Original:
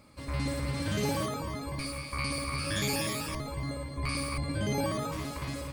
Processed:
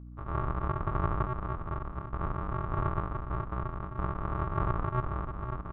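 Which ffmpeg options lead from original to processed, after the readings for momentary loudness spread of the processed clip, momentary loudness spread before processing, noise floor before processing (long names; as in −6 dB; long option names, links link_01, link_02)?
6 LU, 6 LU, −41 dBFS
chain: -af "afwtdn=0.0126,aresample=8000,acrusher=samples=32:mix=1:aa=0.000001,aresample=44100,lowpass=frequency=1200:width_type=q:width=6.5,aeval=exprs='val(0)+0.00631*(sin(2*PI*60*n/s)+sin(2*PI*2*60*n/s)/2+sin(2*PI*3*60*n/s)/3+sin(2*PI*4*60*n/s)/4+sin(2*PI*5*60*n/s)/5)':channel_layout=same"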